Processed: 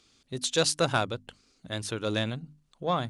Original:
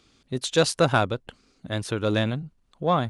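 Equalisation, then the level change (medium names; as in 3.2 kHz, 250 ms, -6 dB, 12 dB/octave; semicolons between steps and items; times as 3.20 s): peaking EQ 7.2 kHz +7.5 dB 2.4 oct; hum notches 50/100/150/200/250/300 Hz; -6.0 dB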